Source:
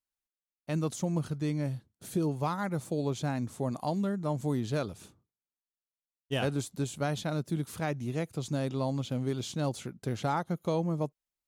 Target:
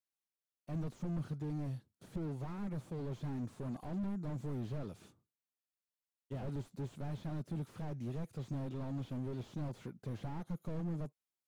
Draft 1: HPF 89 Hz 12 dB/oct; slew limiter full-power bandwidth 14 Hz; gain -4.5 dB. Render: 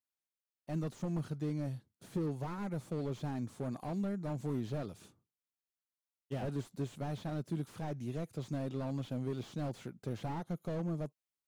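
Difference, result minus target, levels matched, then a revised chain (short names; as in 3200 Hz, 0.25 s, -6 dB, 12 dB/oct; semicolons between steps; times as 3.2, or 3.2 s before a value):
slew limiter: distortion -8 dB
HPF 89 Hz 12 dB/oct; slew limiter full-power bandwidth 6 Hz; gain -4.5 dB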